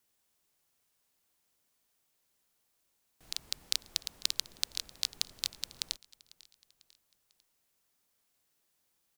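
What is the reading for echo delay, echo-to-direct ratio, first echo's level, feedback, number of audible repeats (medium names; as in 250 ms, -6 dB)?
497 ms, -21.0 dB, -22.0 dB, 47%, 2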